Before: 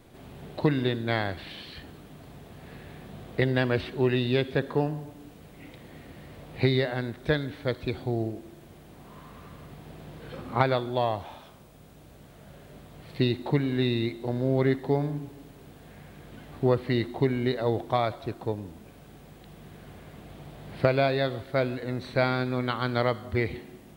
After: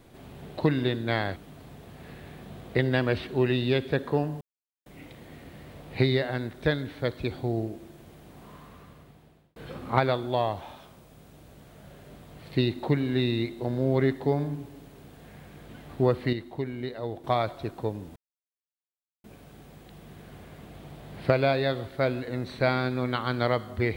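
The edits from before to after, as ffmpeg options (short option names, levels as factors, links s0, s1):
-filter_complex "[0:a]asplit=8[s0][s1][s2][s3][s4][s5][s6][s7];[s0]atrim=end=1.362[s8];[s1]atrim=start=1.988:end=5.04,asetpts=PTS-STARTPTS,afade=t=out:st=3.048:d=0.004:c=hsin[s9];[s2]atrim=start=5.04:end=5.49,asetpts=PTS-STARTPTS,volume=0[s10];[s3]atrim=start=5.49:end=10.19,asetpts=PTS-STARTPTS,afade=t=in:d=0.004:c=hsin,afade=t=out:st=3.6:d=1.1[s11];[s4]atrim=start=10.19:end=16.962,asetpts=PTS-STARTPTS,afade=t=in:d=0.004:c=hsin[s12];[s5]atrim=start=16.958:end=17.872,asetpts=PTS-STARTPTS,volume=0.422[s13];[s6]atrim=start=17.868:end=18.79,asetpts=PTS-STARTPTS,afade=t=out:st=0.918:d=0.004:c=hsin,apad=pad_dur=1.08[s14];[s7]atrim=start=18.79,asetpts=PTS-STARTPTS,afade=t=in:d=0.004:c=hsin[s15];[s9][s10][s11][s12]concat=n=4:v=0:a=1[s16];[s8][s16]acrossfade=d=0.004:c1=hsin:c2=hsin[s17];[s17][s13]acrossfade=d=0.004:c1=hsin:c2=hsin[s18];[s14][s15]concat=n=2:v=0:a=1[s19];[s18][s19]acrossfade=d=0.004:c1=hsin:c2=hsin"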